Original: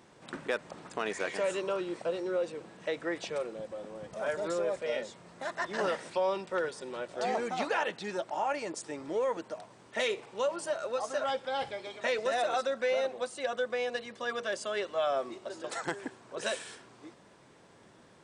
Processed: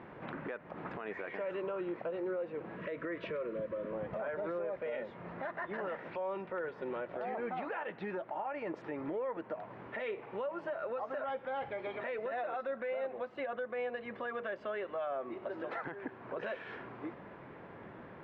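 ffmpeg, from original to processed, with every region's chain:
ffmpeg -i in.wav -filter_complex "[0:a]asettb=1/sr,asplit=3[link_01][link_02][link_03];[link_01]atrim=end=2.764[link_04];[link_02]atrim=start=2.76:end=3.93,asetpts=PTS-STARTPTS,afade=type=in:duration=0.004:curve=qsin,afade=type=out:start_time=1.166:duration=0.004:curve=qsin,asuperstop=centerf=790:order=20:qfactor=3.2,acompressor=threshold=-35dB:ratio=2:attack=3.2:release=140:knee=1:detection=peak[link_05];[link_03]atrim=start=3.926[link_06];[link_04][link_05]acrossfade=duration=0.004:curve1=hsin:curve2=qsin[link_07];[link_07][link_06]acrossfade=duration=0.004:curve1=qsin:curve2=hsin,lowpass=frequency=2300:width=0.5412,lowpass=frequency=2300:width=1.3066,acompressor=threshold=-45dB:ratio=3,alimiter=level_in=14.5dB:limit=-24dB:level=0:latency=1:release=49,volume=-14.5dB,volume=8.5dB" out.wav

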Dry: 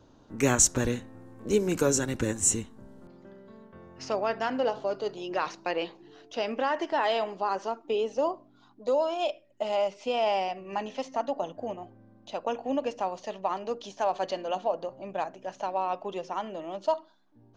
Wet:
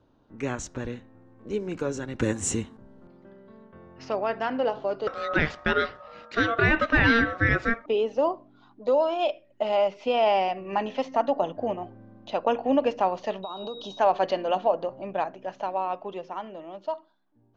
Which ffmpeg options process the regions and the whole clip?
ffmpeg -i in.wav -filter_complex "[0:a]asettb=1/sr,asplit=3[link_01][link_02][link_03];[link_01]atrim=end=2.194[link_04];[link_02]atrim=start=2.19:end=2.77,asetpts=PTS-STARTPTS,afade=type=in:duration=0.004:curve=qsin,afade=type=out:start_time=0.576:duration=0.004:curve=qsin,highpass=51,equalizer=frequency=11000:width=0.82:gain=11.5,acontrast=83[link_05];[link_03]atrim=start=2.766[link_06];[link_04][link_05]acrossfade=duration=0.004:curve1=hsin:curve2=qsin[link_07];[link_07][link_06]acrossfade=duration=0.004:curve1=qsin:curve2=hsin,asettb=1/sr,asplit=3[link_08][link_09][link_10];[link_08]atrim=end=5.074[link_11];[link_09]atrim=start=5.07:end=7.86,asetpts=PTS-STARTPTS,afade=type=in:duration=0.004:curve=qsin,afade=type=out:start_time=2.786:duration=0.004:curve=qsin,acontrast=70,aeval=exprs='val(0)*sin(2*PI*920*n/s)':channel_layout=same[link_12];[link_10]atrim=start=7.856[link_13];[link_11][link_12]acrossfade=duration=0.004:curve1=hsin:curve2=qsin[link_14];[link_14][link_13]acrossfade=duration=0.004:curve1=qsin:curve2=hsin,asettb=1/sr,asplit=3[link_15][link_16][link_17];[link_15]atrim=end=13.434[link_18];[link_16]atrim=start=13.43:end=13.99,asetpts=PTS-STARTPTS,afade=type=in:duration=0.004:curve=qsin,afade=type=out:start_time=0.556:duration=0.004:curve=qsin,acompressor=threshold=-37dB:ratio=16:attack=3.2:release=140:knee=1:detection=peak,aeval=exprs='val(0)+0.00562*sin(2*PI*3800*n/s)':channel_layout=same,asuperstop=centerf=2000:order=4:qfactor=1.3[link_19];[link_17]atrim=start=13.986[link_20];[link_18][link_19]acrossfade=duration=0.004:curve1=hsin:curve2=qsin[link_21];[link_21][link_20]acrossfade=duration=0.004:curve1=qsin:curve2=hsin,lowpass=3500,dynaudnorm=framelen=510:gausssize=11:maxgain=14dB,volume=-6dB" out.wav

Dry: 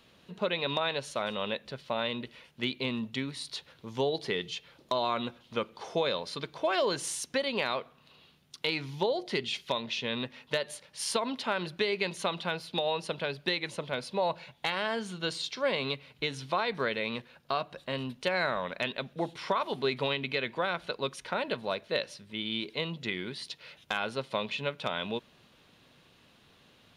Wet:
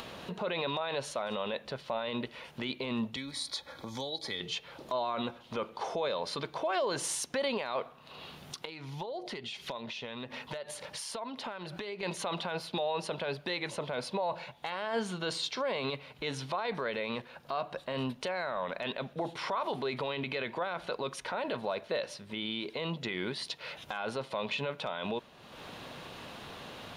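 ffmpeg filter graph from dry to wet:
ffmpeg -i in.wav -filter_complex "[0:a]asettb=1/sr,asplit=3[link_01][link_02][link_03];[link_01]atrim=end=3.164[link_04];[link_02]atrim=start=3.16:end=4.41,asetpts=PTS-STARTPTS,afade=type=in:duration=0.004:curve=qsin,afade=type=out:start_time=1.246:duration=0.004:curve=qsin,aecho=1:1:3.6:0.5,atrim=end_sample=55125,acrossover=split=120|3000[link_05][link_06][link_07];[link_06]acompressor=threshold=-52dB:ratio=2.5:attack=3.2:release=140:knee=2.83:detection=peak[link_08];[link_05][link_08][link_07]amix=inputs=3:normalize=0,asuperstop=centerf=2800:order=4:qfactor=4.8[link_09];[link_03]atrim=start=4.406[link_10];[link_04][link_09]acrossfade=duration=0.004:curve1=hsin:curve2=qsin[link_11];[link_11][link_10]acrossfade=duration=0.004:curve1=qsin:curve2=hsin,asettb=1/sr,asplit=3[link_12][link_13][link_14];[link_12]atrim=end=8.654[link_15];[link_13]atrim=start=8.65:end=12.03,asetpts=PTS-STARTPTS,afade=type=in:duration=0.004:curve=qsin,afade=type=out:start_time=3.376:duration=0.004:curve=qsin,acompressor=threshold=-45dB:ratio=5:attack=3.2:release=140:knee=1:detection=peak,aphaser=in_gain=1:out_gain=1:delay=1.6:decay=0.22:speed=1.8:type=triangular[link_16];[link_14]atrim=start=12.026[link_17];[link_15][link_16]acrossfade=duration=0.004:curve1=hsin:curve2=qsin[link_18];[link_18][link_17]acrossfade=duration=0.004:curve1=qsin:curve2=hsin,equalizer=frequency=790:width_type=o:width=1.8:gain=7.5,acompressor=mode=upward:threshold=-35dB:ratio=2.5,alimiter=level_in=1dB:limit=-24dB:level=0:latency=1:release=24,volume=-1dB,volume=1dB" out.wav

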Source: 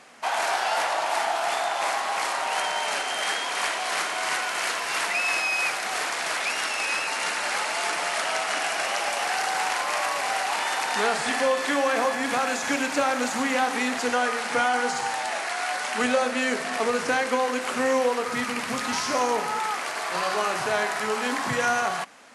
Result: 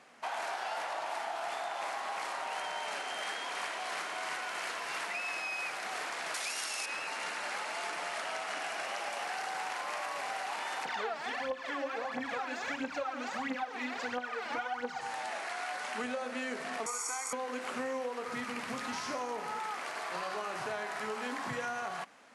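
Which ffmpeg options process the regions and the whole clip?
ffmpeg -i in.wav -filter_complex "[0:a]asettb=1/sr,asplit=3[link_01][link_02][link_03];[link_01]atrim=end=6.344[link_04];[link_02]atrim=start=6.34:end=6.86,asetpts=PTS-STARTPTS,afade=type=in:duration=0.004:curve=qsin,afade=type=out:start_time=0.516:duration=0.004:curve=qsin,bass=frequency=250:gain=-3,treble=frequency=4000:gain=14,bandreject=frequency=7700:width=22[link_05];[link_03]atrim=start=6.856[link_06];[link_04][link_05]acrossfade=duration=0.004:curve1=hsin:curve2=qsin[link_07];[link_07][link_06]acrossfade=duration=0.004:curve1=qsin:curve2=hsin,asettb=1/sr,asplit=3[link_08][link_09][link_10];[link_08]atrim=end=10.854[link_11];[link_09]atrim=start=10.85:end=15.01,asetpts=PTS-STARTPTS,afade=type=in:duration=0.004:curve=qsin,afade=type=out:start_time=4.156:duration=0.004:curve=qsin,lowpass=5000,aphaser=in_gain=1:out_gain=1:delay=3.6:decay=0.73:speed=1.5:type=triangular[link_12];[link_10]atrim=start=15.006[link_13];[link_11][link_12]acrossfade=duration=0.004:curve1=hsin:curve2=qsin[link_14];[link_14][link_13]acrossfade=duration=0.004:curve1=qsin:curve2=hsin,asettb=1/sr,asplit=3[link_15][link_16][link_17];[link_15]atrim=end=16.864[link_18];[link_16]atrim=start=16.86:end=17.33,asetpts=PTS-STARTPTS,afade=type=in:duration=0.004:curve=qsin,afade=type=out:start_time=0.466:duration=0.004:curve=qsin,highpass=frequency=440:width=0.5412,highpass=frequency=440:width=1.3066,highshelf=frequency=5000:width_type=q:width=3:gain=13,aecho=1:1:0.9:0.91,atrim=end_sample=20727[link_19];[link_17]atrim=start=17.326[link_20];[link_18][link_19]acrossfade=duration=0.004:curve1=hsin:curve2=qsin[link_21];[link_21][link_20]acrossfade=duration=0.004:curve1=qsin:curve2=hsin,highpass=61,highshelf=frequency=4400:gain=-6,acompressor=threshold=-26dB:ratio=6,volume=-7.5dB" out.wav

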